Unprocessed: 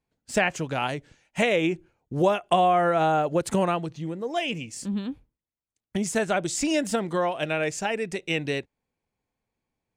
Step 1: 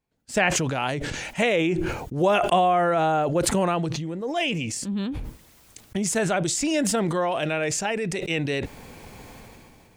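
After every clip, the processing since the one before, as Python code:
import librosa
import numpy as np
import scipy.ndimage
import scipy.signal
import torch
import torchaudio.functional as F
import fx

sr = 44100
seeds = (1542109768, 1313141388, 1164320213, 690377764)

y = fx.sustainer(x, sr, db_per_s=22.0)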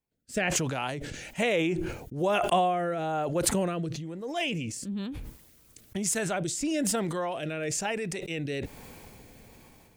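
y = fx.high_shelf(x, sr, hz=11000.0, db=11.5)
y = fx.rotary(y, sr, hz=1.1)
y = y * librosa.db_to_amplitude(-4.0)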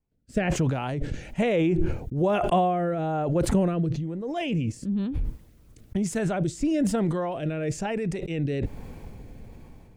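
y = fx.tilt_eq(x, sr, slope=-3.0)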